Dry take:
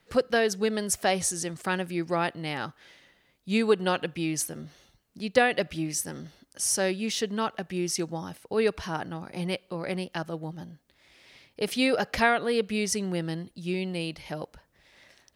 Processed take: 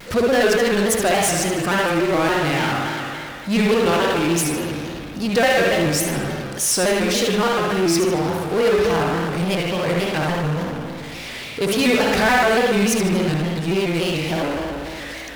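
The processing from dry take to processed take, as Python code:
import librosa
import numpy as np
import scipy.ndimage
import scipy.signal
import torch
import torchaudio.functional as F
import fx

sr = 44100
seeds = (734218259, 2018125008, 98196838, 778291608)

p1 = fx.lower_of_two(x, sr, delay_ms=4.5, at=(10.23, 10.69))
p2 = fx.rev_spring(p1, sr, rt60_s=1.4, pass_ms=(56,), chirp_ms=40, drr_db=-1.0)
p3 = fx.power_curve(p2, sr, exponent=0.5)
p4 = p3 + fx.echo_feedback(p3, sr, ms=76, feedback_pct=48, wet_db=-8, dry=0)
p5 = fx.vibrato_shape(p4, sr, shape='square', rate_hz=3.5, depth_cents=100.0)
y = p5 * 10.0 ** (-2.0 / 20.0)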